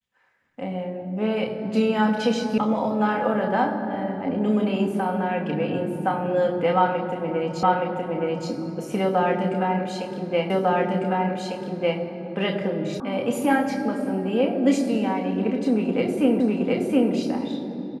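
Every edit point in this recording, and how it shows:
2.58 sound cut off
7.63 repeat of the last 0.87 s
10.5 repeat of the last 1.5 s
13 sound cut off
16.4 repeat of the last 0.72 s

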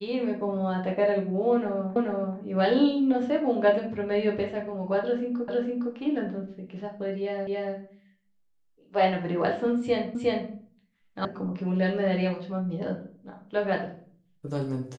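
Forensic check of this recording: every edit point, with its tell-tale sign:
1.96 repeat of the last 0.43 s
5.48 repeat of the last 0.46 s
7.47 repeat of the last 0.28 s
10.15 repeat of the last 0.36 s
11.25 sound cut off

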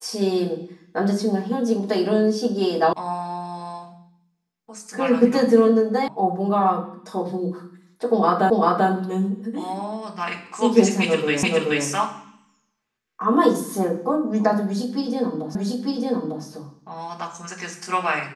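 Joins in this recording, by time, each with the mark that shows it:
2.93 sound cut off
6.08 sound cut off
8.5 repeat of the last 0.39 s
11.43 repeat of the last 0.43 s
15.55 repeat of the last 0.9 s

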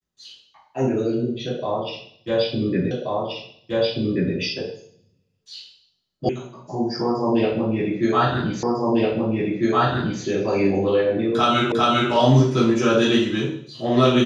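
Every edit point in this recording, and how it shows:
2.91 repeat of the last 1.43 s
6.29 sound cut off
8.63 repeat of the last 1.6 s
11.72 repeat of the last 0.4 s

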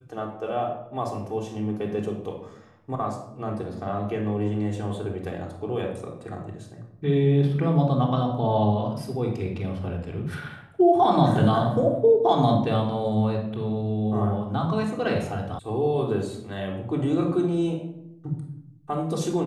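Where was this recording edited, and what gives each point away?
15.59 sound cut off

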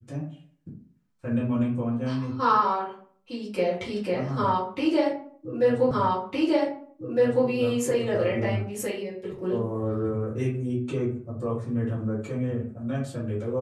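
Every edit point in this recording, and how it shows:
5.91 repeat of the last 1.56 s

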